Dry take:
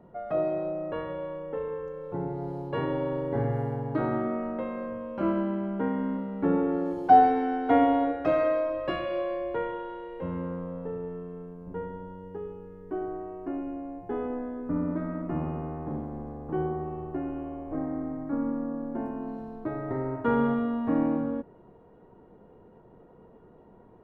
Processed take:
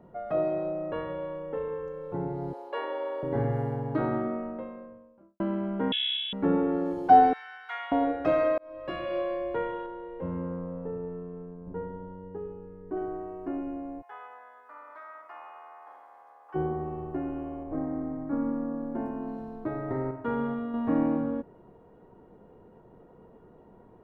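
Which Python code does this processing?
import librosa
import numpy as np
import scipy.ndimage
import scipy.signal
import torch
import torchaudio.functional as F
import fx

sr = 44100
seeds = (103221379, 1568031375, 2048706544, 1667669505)

y = fx.highpass(x, sr, hz=470.0, slope=24, at=(2.53, 3.23))
y = fx.studio_fade_out(y, sr, start_s=3.93, length_s=1.47)
y = fx.freq_invert(y, sr, carrier_hz=3600, at=(5.92, 6.33))
y = fx.highpass(y, sr, hz=1300.0, slope=24, at=(7.33, 7.92))
y = fx.lowpass(y, sr, hz=1300.0, slope=6, at=(9.86, 12.97))
y = fx.highpass(y, sr, hz=890.0, slope=24, at=(14.01, 16.54), fade=0.02)
y = fx.high_shelf(y, sr, hz=2400.0, db=-7.5, at=(17.63, 18.31))
y = fx.edit(y, sr, fx.fade_in_span(start_s=8.58, length_s=0.58),
    fx.clip_gain(start_s=20.11, length_s=0.63, db=-5.5), tone=tone)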